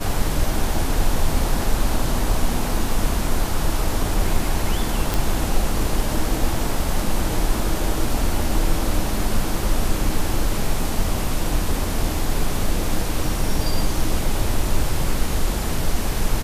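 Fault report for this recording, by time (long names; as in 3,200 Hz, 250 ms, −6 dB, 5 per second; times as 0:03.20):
0:05.14: click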